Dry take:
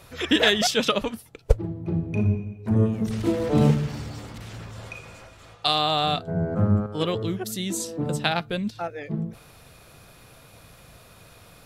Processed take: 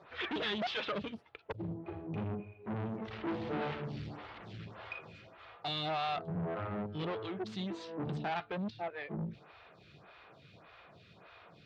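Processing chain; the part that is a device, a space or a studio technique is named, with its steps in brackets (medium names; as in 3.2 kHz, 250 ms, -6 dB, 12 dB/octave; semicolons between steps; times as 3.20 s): vibe pedal into a guitar amplifier (lamp-driven phase shifter 1.7 Hz; valve stage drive 31 dB, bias 0.4; cabinet simulation 110–3800 Hz, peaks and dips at 120 Hz -4 dB, 250 Hz -8 dB, 510 Hz -5 dB)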